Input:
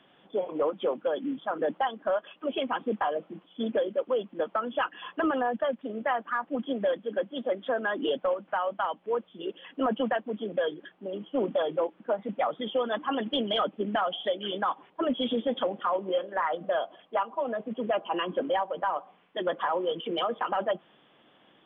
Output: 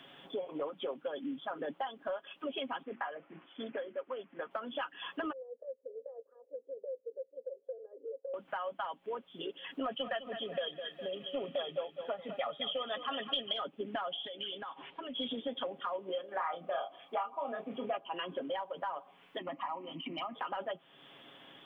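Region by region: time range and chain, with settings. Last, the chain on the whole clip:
0:02.83–0:04.51: low-pass filter 2,100 Hz 24 dB per octave + tilt shelving filter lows −8 dB, about 1,100 Hz + mains-hum notches 60/120/180/240/300/360 Hz
0:05.32–0:08.34: downward compressor 4 to 1, threshold −28 dBFS + flat-topped band-pass 490 Hz, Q 6.9
0:09.84–0:13.53: parametric band 3,000 Hz +8 dB 1.3 octaves + comb filter 1.6 ms, depth 48% + repeating echo 205 ms, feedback 38%, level −13 dB
0:14.26–0:15.16: downward compressor 10 to 1, threshold −39 dBFS + low-pass with resonance 3,100 Hz, resonance Q 2
0:16.28–0:17.97: double-tracking delay 29 ms −5.5 dB + hollow resonant body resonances 780/1,200/2,300 Hz, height 10 dB, ringing for 20 ms
0:19.38–0:20.35: parametric band 280 Hz +11 dB 0.45 octaves + phaser with its sweep stopped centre 2,300 Hz, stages 8
whole clip: high-shelf EQ 2,600 Hz +9.5 dB; comb filter 7.3 ms, depth 43%; downward compressor 2.5 to 1, threshold −44 dBFS; level +2 dB

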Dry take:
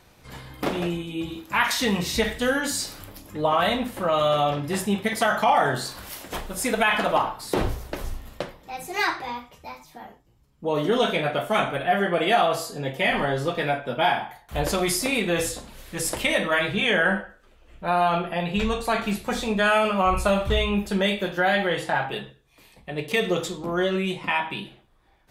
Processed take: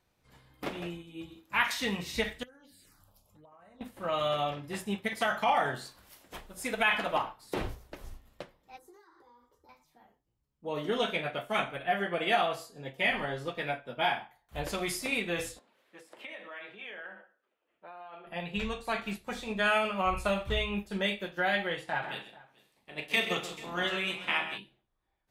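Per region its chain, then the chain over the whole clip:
0:02.43–0:03.81: phaser swept by the level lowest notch 240 Hz, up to 3,400 Hz, full sweep at −18.5 dBFS + downward compressor 8 to 1, threshold −36 dBFS
0:08.78–0:09.69: downward compressor 16 to 1, threshold −38 dBFS + parametric band 410 Hz +8 dB 2.5 octaves + phaser with its sweep stopped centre 680 Hz, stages 6
0:15.59–0:18.27: high-pass filter 160 Hz + downward compressor 8 to 1, threshold −27 dBFS + three-way crossover with the lows and the highs turned down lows −17 dB, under 260 Hz, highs −14 dB, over 3,500 Hz
0:22.02–0:24.57: ceiling on every frequency bin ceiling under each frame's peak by 13 dB + high-pass filter 130 Hz 6 dB per octave + multi-tap delay 40/131/167/438 ms −10/−8.5/−15.5/−14 dB
whole clip: dynamic equaliser 2,400 Hz, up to +5 dB, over −39 dBFS, Q 1.2; expander for the loud parts 1.5 to 1, over −40 dBFS; level −7 dB

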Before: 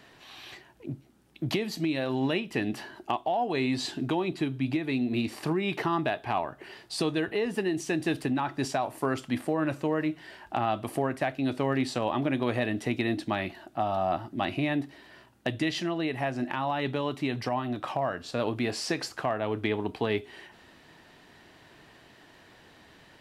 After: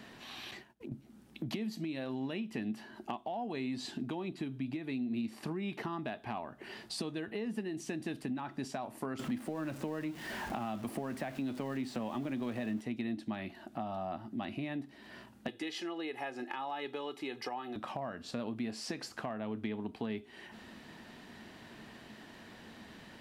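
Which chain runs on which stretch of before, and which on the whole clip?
0:00.51–0:00.92: downward compressor 4 to 1, threshold −43 dBFS + downward expander −50 dBFS
0:09.19–0:12.81: converter with a step at zero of −38 dBFS + multiband upward and downward compressor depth 70%
0:15.48–0:17.76: high-pass filter 350 Hz + comb filter 2.4 ms, depth 67%
whole clip: parametric band 220 Hz +12.5 dB 0.35 octaves; downward compressor 2.5 to 1, threshold −43 dBFS; level +1 dB

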